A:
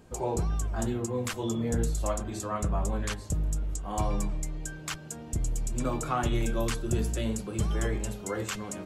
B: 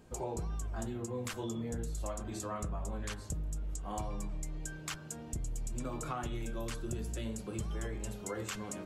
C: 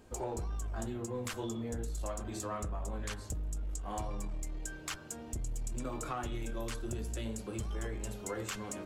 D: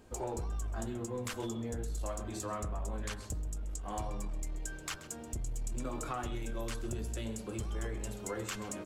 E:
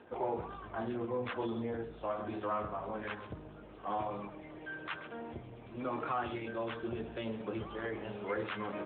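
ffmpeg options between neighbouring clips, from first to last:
-af "bandreject=f=96.55:t=h:w=4,bandreject=f=193.1:t=h:w=4,bandreject=f=289.65:t=h:w=4,bandreject=f=386.2:t=h:w=4,bandreject=f=482.75:t=h:w=4,bandreject=f=579.3:t=h:w=4,bandreject=f=675.85:t=h:w=4,bandreject=f=772.4:t=h:w=4,bandreject=f=868.95:t=h:w=4,bandreject=f=965.5:t=h:w=4,bandreject=f=1.06205k:t=h:w=4,bandreject=f=1.1586k:t=h:w=4,bandreject=f=1.25515k:t=h:w=4,bandreject=f=1.3517k:t=h:w=4,bandreject=f=1.44825k:t=h:w=4,bandreject=f=1.5448k:t=h:w=4,bandreject=f=1.64135k:t=h:w=4,bandreject=f=1.7379k:t=h:w=4,acompressor=threshold=-31dB:ratio=6,volume=-3.5dB"
-filter_complex "[0:a]equalizer=f=160:w=4.5:g=-11.5,asplit=2[a][b];[b]aeval=exprs='clip(val(0),-1,0.00944)':c=same,volume=-3.5dB[c];[a][c]amix=inputs=2:normalize=0,volume=-3dB"
-af "aecho=1:1:131:0.168"
-filter_complex "[0:a]asplit=2[a][b];[b]highpass=f=720:p=1,volume=14dB,asoftclip=type=tanh:threshold=-23.5dB[c];[a][c]amix=inputs=2:normalize=0,lowpass=f=1.9k:p=1,volume=-6dB,volume=1dB" -ar 8000 -c:a libopencore_amrnb -b:a 10200

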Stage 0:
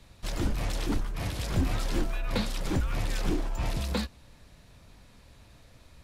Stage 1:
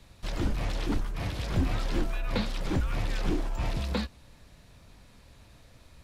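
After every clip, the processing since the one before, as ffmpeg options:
-filter_complex "[0:a]acrossover=split=5200[a][b];[b]acompressor=threshold=-53dB:ratio=4:attack=1:release=60[c];[a][c]amix=inputs=2:normalize=0"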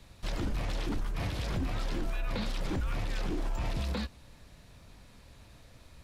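-af "alimiter=level_in=1dB:limit=-24dB:level=0:latency=1:release=33,volume=-1dB"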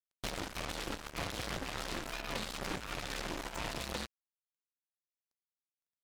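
-filter_complex "[0:a]aeval=exprs='0.0596*(cos(1*acos(clip(val(0)/0.0596,-1,1)))-cos(1*PI/2))+0.00188*(cos(5*acos(clip(val(0)/0.0596,-1,1)))-cos(5*PI/2))':c=same,acrossover=split=180|360|830[a][b][c][d];[a]acompressor=threshold=-46dB:ratio=4[e];[b]acompressor=threshold=-50dB:ratio=4[f];[c]acompressor=threshold=-51dB:ratio=4[g];[d]acompressor=threshold=-44dB:ratio=4[h];[e][f][g][h]amix=inputs=4:normalize=0,acrusher=bits=5:mix=0:aa=0.5,volume=4.5dB"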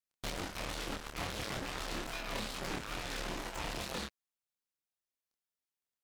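-af "flanger=delay=22.5:depth=6.9:speed=2.3,asoftclip=type=hard:threshold=-32.5dB,volume=3.5dB"

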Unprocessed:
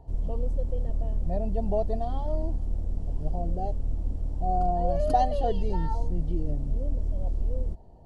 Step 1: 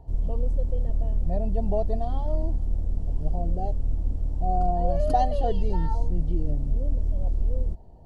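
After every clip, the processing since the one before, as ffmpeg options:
-af "lowshelf=f=150:g=3.5"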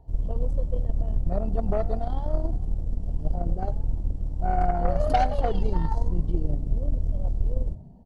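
-filter_complex "[0:a]aeval=exprs='0.316*(cos(1*acos(clip(val(0)/0.316,-1,1)))-cos(1*PI/2))+0.02*(cos(4*acos(clip(val(0)/0.316,-1,1)))-cos(4*PI/2))+0.0447*(cos(6*acos(clip(val(0)/0.316,-1,1)))-cos(6*PI/2))+0.02*(cos(7*acos(clip(val(0)/0.316,-1,1)))-cos(7*PI/2))+0.0224*(cos(8*acos(clip(val(0)/0.316,-1,1)))-cos(8*PI/2))':c=same,asplit=5[a][b][c][d][e];[b]adelay=93,afreqshift=50,volume=-19.5dB[f];[c]adelay=186,afreqshift=100,volume=-25dB[g];[d]adelay=279,afreqshift=150,volume=-30.5dB[h];[e]adelay=372,afreqshift=200,volume=-36dB[i];[a][f][g][h][i]amix=inputs=5:normalize=0"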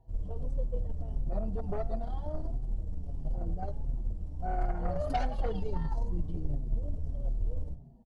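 -filter_complex "[0:a]asplit=2[a][b];[b]adelay=5.7,afreqshift=-1.5[c];[a][c]amix=inputs=2:normalize=1,volume=-4.5dB"

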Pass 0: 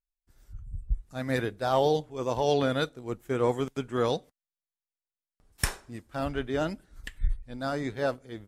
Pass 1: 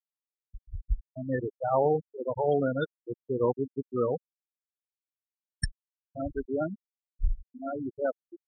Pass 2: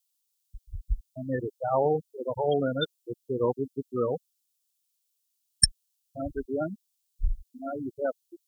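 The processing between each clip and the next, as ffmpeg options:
-af "afftfilt=real='re*gte(hypot(re,im),0.141)':imag='im*gte(hypot(re,im),0.141)':win_size=1024:overlap=0.75"
-af "aexciter=amount=6.2:drive=5.1:freq=2.8k"

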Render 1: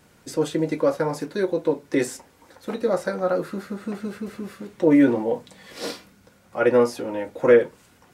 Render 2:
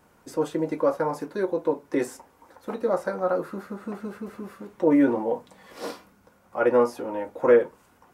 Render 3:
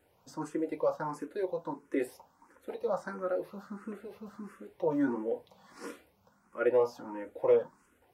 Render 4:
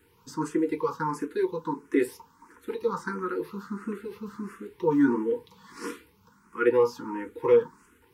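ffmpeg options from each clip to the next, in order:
-af "equalizer=f=125:t=o:w=1:g=-5,equalizer=f=1k:t=o:w=1:g=6,equalizer=f=2k:t=o:w=1:g=-3,equalizer=f=4k:t=o:w=1:g=-6,equalizer=f=8k:t=o:w=1:g=-4,volume=-3dB"
-filter_complex "[0:a]asplit=2[a][b];[b]afreqshift=1.5[c];[a][c]amix=inputs=2:normalize=1,volume=-5.5dB"
-af "asuperstop=centerf=650:order=12:qfactor=1.7,volume=8dB"

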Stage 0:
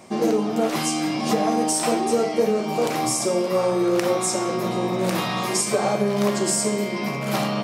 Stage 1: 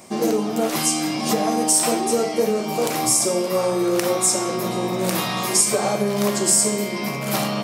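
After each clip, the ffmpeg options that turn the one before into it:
-af "highshelf=f=6.8k:g=12"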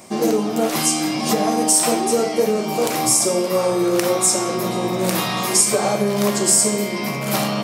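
-af "flanger=delay=9:depth=7.8:regen=-88:speed=0.88:shape=triangular,volume=6.5dB"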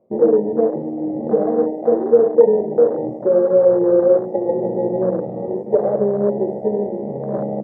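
-af "lowpass=f=510:t=q:w=4.9,afwtdn=0.141,volume=-4dB"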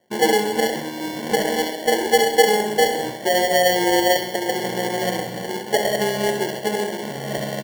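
-af "acrusher=samples=35:mix=1:aa=0.000001,aecho=1:1:66|132|198|264|330|396|462:0.335|0.188|0.105|0.0588|0.0329|0.0184|0.0103,volume=-4dB"

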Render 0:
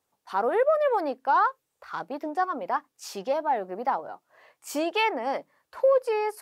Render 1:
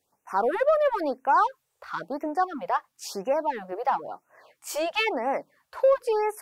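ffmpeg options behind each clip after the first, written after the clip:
-filter_complex "[0:a]asplit=2[a][b];[b]asoftclip=type=tanh:threshold=-27dB,volume=-8dB[c];[a][c]amix=inputs=2:normalize=0,afftfilt=real='re*(1-between(b*sr/1024,220*pow(4200/220,0.5+0.5*sin(2*PI*0.99*pts/sr))/1.41,220*pow(4200/220,0.5+0.5*sin(2*PI*0.99*pts/sr))*1.41))':imag='im*(1-between(b*sr/1024,220*pow(4200/220,0.5+0.5*sin(2*PI*0.99*pts/sr))/1.41,220*pow(4200/220,0.5+0.5*sin(2*PI*0.99*pts/sr))*1.41))':win_size=1024:overlap=0.75"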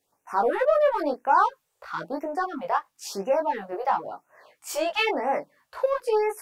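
-af "flanger=delay=18:depth=2.6:speed=0.46,volume=4dB"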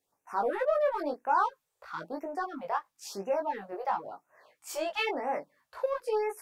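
-af "bandreject=f=2.9k:w=30,volume=-6.5dB"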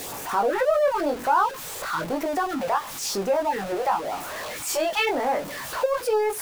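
-filter_complex "[0:a]aeval=exprs='val(0)+0.5*0.0126*sgn(val(0))':c=same,asplit=2[a][b];[b]acompressor=threshold=-35dB:ratio=6,volume=2.5dB[c];[a][c]amix=inputs=2:normalize=0,volume=2.5dB"

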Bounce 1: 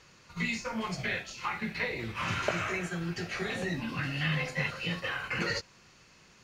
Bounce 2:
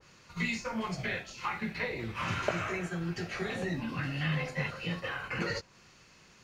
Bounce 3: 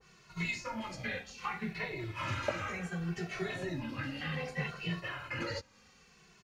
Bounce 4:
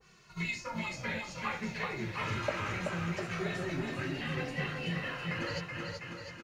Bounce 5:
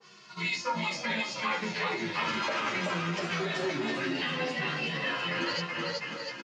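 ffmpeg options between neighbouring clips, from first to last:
-af "adynamicequalizer=threshold=0.00562:dfrequency=1500:dqfactor=0.7:tfrequency=1500:tqfactor=0.7:attack=5:release=100:ratio=0.375:range=2.5:mode=cutabove:tftype=highshelf"
-filter_complex "[0:a]asplit=2[a][b];[b]adelay=2.2,afreqshift=-0.65[c];[a][c]amix=inputs=2:normalize=1"
-af "aecho=1:1:380|703|977.6|1211|1409:0.631|0.398|0.251|0.158|0.1"
-filter_complex "[0:a]alimiter=level_in=4.5dB:limit=-24dB:level=0:latency=1:release=19,volume=-4.5dB,highpass=f=180:w=0.5412,highpass=f=180:w=1.3066,equalizer=f=980:t=q:w=4:g=4,equalizer=f=3.3k:t=q:w=4:g=6,equalizer=f=4.9k:t=q:w=4:g=6,lowpass=f=7.5k:w=0.5412,lowpass=f=7.5k:w=1.3066,asplit=2[a][b];[b]adelay=10.5,afreqshift=-0.82[c];[a][c]amix=inputs=2:normalize=1,volume=9dB"

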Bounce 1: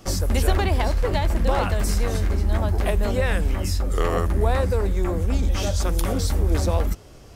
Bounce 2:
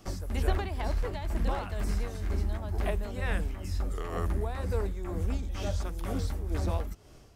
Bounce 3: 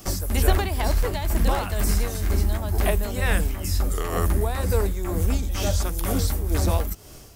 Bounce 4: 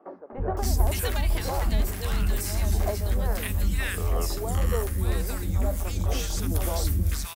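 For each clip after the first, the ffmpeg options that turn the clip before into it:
-filter_complex "[0:a]tremolo=f=2.1:d=0.59,acrossover=split=3200[a][b];[b]acompressor=threshold=-40dB:ratio=4:attack=1:release=60[c];[a][c]amix=inputs=2:normalize=0,bandreject=f=520:w=12,volume=-7dB"
-af "aemphasis=mode=production:type=50fm,volume=8.5dB"
-filter_complex "[0:a]acrossover=split=310|1200[a][b][c];[a]adelay=320[d];[c]adelay=570[e];[d][b][e]amix=inputs=3:normalize=0,volume=-2.5dB"

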